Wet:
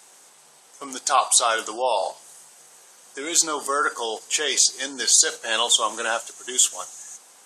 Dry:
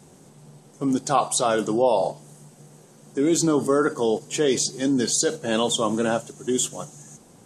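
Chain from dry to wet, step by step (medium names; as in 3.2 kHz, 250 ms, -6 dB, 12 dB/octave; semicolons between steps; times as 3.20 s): high-pass 1.1 kHz 12 dB/octave; trim +7 dB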